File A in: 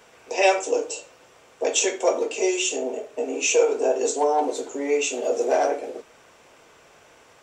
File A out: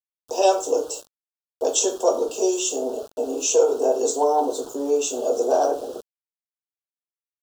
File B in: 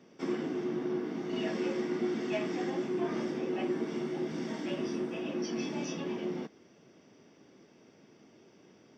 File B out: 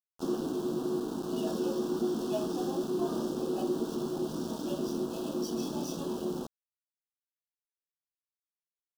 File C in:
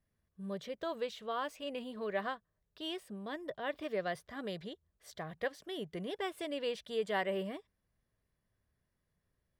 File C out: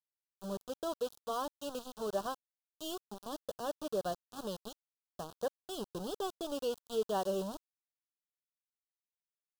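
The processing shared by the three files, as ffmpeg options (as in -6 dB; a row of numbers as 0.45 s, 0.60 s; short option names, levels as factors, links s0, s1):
-af "aeval=exprs='val(0)*gte(abs(val(0)),0.0106)':c=same,asuperstop=centerf=2100:order=4:qfactor=1,volume=1.19"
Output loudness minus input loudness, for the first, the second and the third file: +1.0 LU, +1.0 LU, 0.0 LU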